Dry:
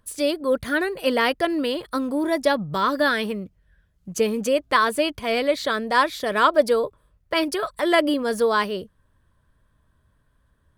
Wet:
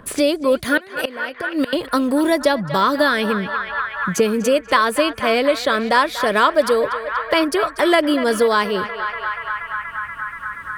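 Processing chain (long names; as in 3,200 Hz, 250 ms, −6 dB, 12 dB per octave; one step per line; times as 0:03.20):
0:00.77–0:01.73: gate with flip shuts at −16 dBFS, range −24 dB
feedback echo with a band-pass in the loop 239 ms, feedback 82%, band-pass 1,500 Hz, level −12 dB
multiband upward and downward compressor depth 70%
level +4.5 dB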